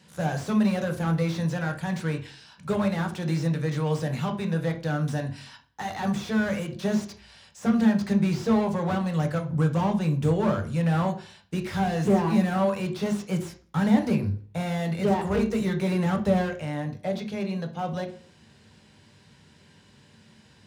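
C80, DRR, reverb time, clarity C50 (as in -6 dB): 16.5 dB, 4.0 dB, 0.45 s, 11.5 dB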